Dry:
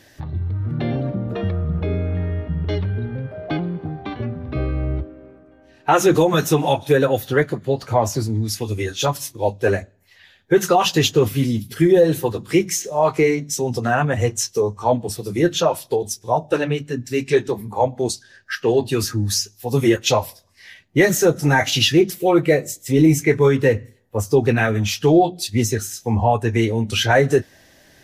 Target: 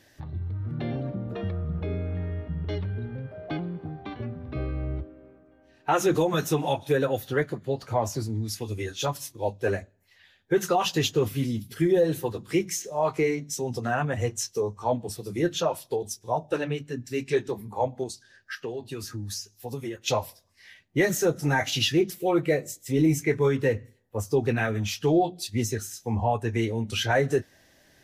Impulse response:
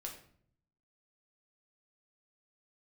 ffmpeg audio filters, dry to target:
-filter_complex "[0:a]asettb=1/sr,asplit=3[a][b][c];[a]atrim=end=18.034[d];[b]atrim=start=18.03:end=20.08,asetpts=PTS-STARTPTS,afade=t=in:d=0.004:c=qsin,afade=t=out:st=2.046:d=0.004:c=qsin,acompressor=threshold=-24dB:ratio=5[e];[c]atrim=start=20.076[f];[d][e]acrossfade=d=0.004:c1=hsin:c2=qsin[g];[g][f]acrossfade=d=0.004:c1=qsin:c2=hsin,volume=-8dB"

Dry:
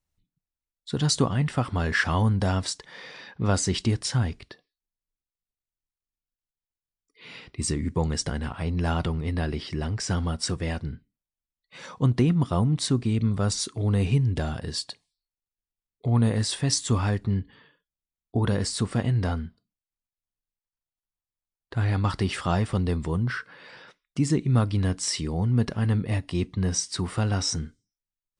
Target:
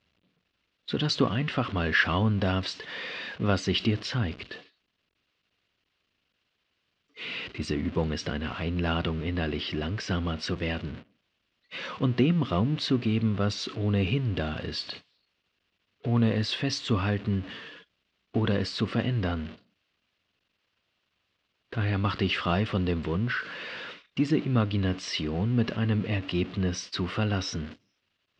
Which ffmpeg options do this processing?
-af "aeval=exprs='val(0)+0.5*0.0168*sgn(val(0))':c=same,highpass=110,equalizer=f=140:t=q:w=4:g=-7,equalizer=f=850:t=q:w=4:g=-7,equalizer=f=2.8k:t=q:w=4:g=6,lowpass=f=4.3k:w=0.5412,lowpass=f=4.3k:w=1.3066,agate=range=-24dB:threshold=-40dB:ratio=16:detection=peak"

